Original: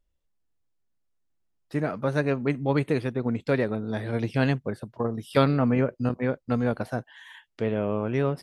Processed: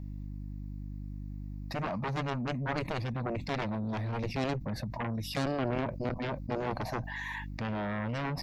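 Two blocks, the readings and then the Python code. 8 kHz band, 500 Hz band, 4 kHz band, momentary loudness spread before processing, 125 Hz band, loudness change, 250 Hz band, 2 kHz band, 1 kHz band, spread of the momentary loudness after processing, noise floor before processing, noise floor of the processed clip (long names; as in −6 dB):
can't be measured, −10.0 dB, −1.0 dB, 8 LU, −6.5 dB, −8.5 dB, −8.5 dB, −4.0 dB, −2.5 dB, 10 LU, −74 dBFS, −41 dBFS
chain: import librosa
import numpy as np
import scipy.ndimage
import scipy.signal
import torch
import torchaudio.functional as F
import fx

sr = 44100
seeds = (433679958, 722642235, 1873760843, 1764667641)

y = fx.peak_eq(x, sr, hz=6400.0, db=-5.0, octaves=2.0)
y = fx.dmg_buzz(y, sr, base_hz=50.0, harmonics=6, level_db=-60.0, tilt_db=-4, odd_only=False)
y = fx.dynamic_eq(y, sr, hz=1900.0, q=2.5, threshold_db=-50.0, ratio=4.0, max_db=-6)
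y = fx.fixed_phaser(y, sr, hz=2100.0, stages=8)
y = fx.cheby_harmonics(y, sr, harmonics=(7,), levels_db=(-9,), full_scale_db=-14.5)
y = fx.env_flatten(y, sr, amount_pct=70)
y = y * librosa.db_to_amplitude(-9.0)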